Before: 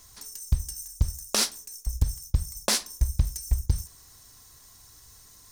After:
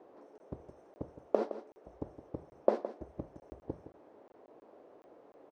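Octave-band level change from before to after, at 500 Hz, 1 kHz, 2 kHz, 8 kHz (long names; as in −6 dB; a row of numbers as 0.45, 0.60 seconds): +6.0 dB, −3.0 dB, −19.5 dB, below −40 dB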